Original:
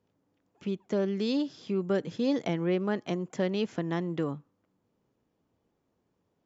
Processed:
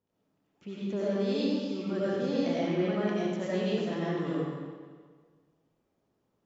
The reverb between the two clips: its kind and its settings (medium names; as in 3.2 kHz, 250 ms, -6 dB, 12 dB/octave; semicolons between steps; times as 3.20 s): algorithmic reverb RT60 1.6 s, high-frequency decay 0.9×, pre-delay 50 ms, DRR -9 dB; trim -9 dB